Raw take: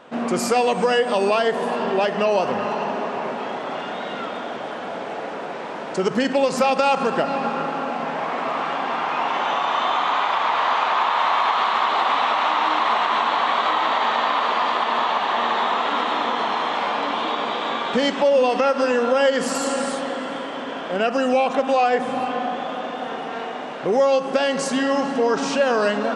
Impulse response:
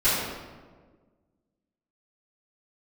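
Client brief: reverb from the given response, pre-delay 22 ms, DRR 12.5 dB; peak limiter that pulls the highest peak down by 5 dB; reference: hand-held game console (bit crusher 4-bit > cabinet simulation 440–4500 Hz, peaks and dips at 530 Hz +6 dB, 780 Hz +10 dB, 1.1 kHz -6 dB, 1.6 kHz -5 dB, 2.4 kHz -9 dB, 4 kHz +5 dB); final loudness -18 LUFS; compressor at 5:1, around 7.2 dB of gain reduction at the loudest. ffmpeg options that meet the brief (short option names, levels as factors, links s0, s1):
-filter_complex "[0:a]acompressor=threshold=0.0794:ratio=5,alimiter=limit=0.133:level=0:latency=1,asplit=2[s0][s1];[1:a]atrim=start_sample=2205,adelay=22[s2];[s1][s2]afir=irnorm=-1:irlink=0,volume=0.0376[s3];[s0][s3]amix=inputs=2:normalize=0,acrusher=bits=3:mix=0:aa=0.000001,highpass=440,equalizer=f=530:t=q:w=4:g=6,equalizer=f=780:t=q:w=4:g=10,equalizer=f=1100:t=q:w=4:g=-6,equalizer=f=1600:t=q:w=4:g=-5,equalizer=f=2400:t=q:w=4:g=-9,equalizer=f=4000:t=q:w=4:g=5,lowpass=f=4500:w=0.5412,lowpass=f=4500:w=1.3066,volume=2.11"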